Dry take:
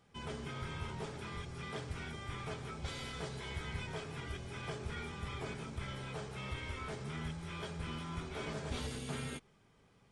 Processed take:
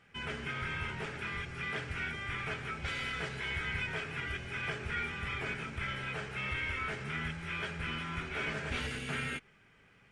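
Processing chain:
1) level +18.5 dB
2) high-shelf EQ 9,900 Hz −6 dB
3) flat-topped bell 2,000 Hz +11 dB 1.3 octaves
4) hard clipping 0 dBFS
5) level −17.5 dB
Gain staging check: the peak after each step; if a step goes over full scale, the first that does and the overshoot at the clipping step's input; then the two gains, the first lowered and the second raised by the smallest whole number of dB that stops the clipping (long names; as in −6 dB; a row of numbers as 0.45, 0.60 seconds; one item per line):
−9.5, −9.5, −6.0, −6.0, −23.5 dBFS
no step passes full scale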